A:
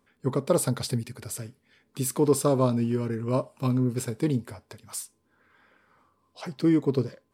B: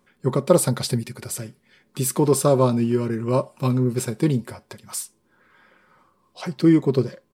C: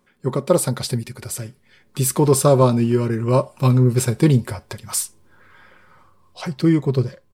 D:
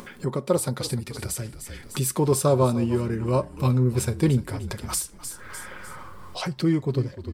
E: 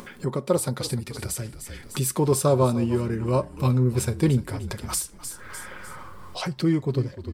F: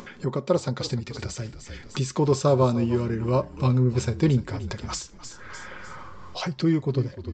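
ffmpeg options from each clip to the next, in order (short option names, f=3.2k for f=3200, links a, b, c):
-af "aecho=1:1:5.5:0.4,volume=5dB"
-af "dynaudnorm=f=210:g=11:m=11.5dB,asubboost=boost=6.5:cutoff=95"
-filter_complex "[0:a]asplit=4[a][b][c][d];[b]adelay=301,afreqshift=-41,volume=-16dB[e];[c]adelay=602,afreqshift=-82,volume=-26.2dB[f];[d]adelay=903,afreqshift=-123,volume=-36.3dB[g];[a][e][f][g]amix=inputs=4:normalize=0,acompressor=mode=upward:threshold=-17dB:ratio=2.5,volume=-6dB"
-af anull
-af "aresample=16000,aresample=44100"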